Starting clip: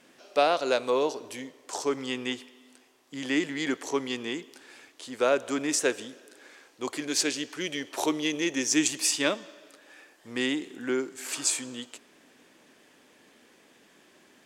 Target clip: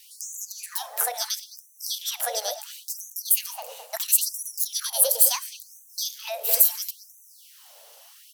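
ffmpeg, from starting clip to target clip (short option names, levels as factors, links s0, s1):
-filter_complex "[0:a]lowshelf=f=220:t=q:w=3:g=-13,bandreject=f=60:t=h:w=6,bandreject=f=120:t=h:w=6,bandreject=f=180:t=h:w=6,bandreject=f=240:t=h:w=6,bandreject=f=300:t=h:w=6,bandreject=f=360:t=h:w=6,bandreject=f=420:t=h:w=6,acompressor=threshold=0.0447:ratio=5,crystalizer=i=6.5:c=0,asetrate=76440,aresample=44100,asplit=2[s0][s1];[s1]adelay=212,lowpass=f=1500:p=1,volume=0.562,asplit=2[s2][s3];[s3]adelay=212,lowpass=f=1500:p=1,volume=0.43,asplit=2[s4][s5];[s5]adelay=212,lowpass=f=1500:p=1,volume=0.43,asplit=2[s6][s7];[s7]adelay=212,lowpass=f=1500:p=1,volume=0.43,asplit=2[s8][s9];[s9]adelay=212,lowpass=f=1500:p=1,volume=0.43[s10];[s2][s4][s6][s8][s10]amix=inputs=5:normalize=0[s11];[s0][s11]amix=inputs=2:normalize=0,afftfilt=real='re*gte(b*sr/1024,390*pow(5900/390,0.5+0.5*sin(2*PI*0.73*pts/sr)))':imag='im*gte(b*sr/1024,390*pow(5900/390,0.5+0.5*sin(2*PI*0.73*pts/sr)))':win_size=1024:overlap=0.75,volume=0.891"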